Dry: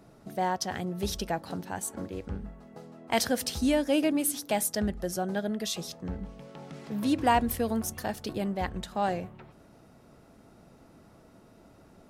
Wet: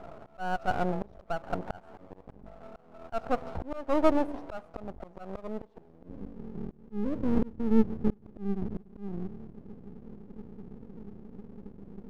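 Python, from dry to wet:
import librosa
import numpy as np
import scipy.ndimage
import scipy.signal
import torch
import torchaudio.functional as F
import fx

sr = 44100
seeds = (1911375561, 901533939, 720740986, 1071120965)

y = fx.filter_sweep_lowpass(x, sr, from_hz=700.0, to_hz=210.0, start_s=5.13, end_s=6.55, q=5.7)
y = np.maximum(y, 0.0)
y = fx.auto_swell(y, sr, attack_ms=697.0)
y = F.gain(torch.from_numpy(y), 7.0).numpy()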